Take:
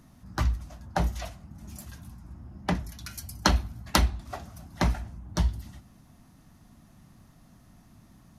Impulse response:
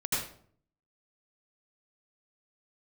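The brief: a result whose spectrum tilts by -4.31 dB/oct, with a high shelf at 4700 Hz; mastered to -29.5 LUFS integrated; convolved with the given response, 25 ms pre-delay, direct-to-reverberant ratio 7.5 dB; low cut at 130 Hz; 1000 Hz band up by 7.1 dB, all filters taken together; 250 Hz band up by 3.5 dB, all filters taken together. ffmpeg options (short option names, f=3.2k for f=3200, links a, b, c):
-filter_complex "[0:a]highpass=130,equalizer=f=250:t=o:g=5.5,equalizer=f=1k:t=o:g=9,highshelf=f=4.7k:g=-7,asplit=2[a][b];[1:a]atrim=start_sample=2205,adelay=25[c];[b][c]afir=irnorm=-1:irlink=0,volume=-15dB[d];[a][d]amix=inputs=2:normalize=0,volume=-1dB"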